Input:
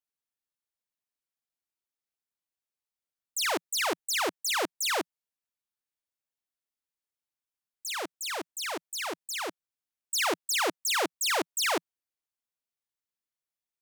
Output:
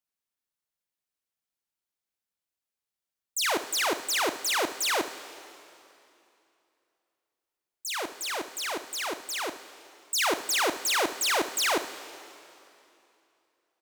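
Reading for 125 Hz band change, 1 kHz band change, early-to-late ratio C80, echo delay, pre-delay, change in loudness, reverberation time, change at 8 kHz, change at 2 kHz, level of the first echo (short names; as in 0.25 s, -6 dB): n/a, +2.0 dB, 13.0 dB, 69 ms, 6 ms, +2.0 dB, 2.8 s, +2.0 dB, +2.0 dB, -13.5 dB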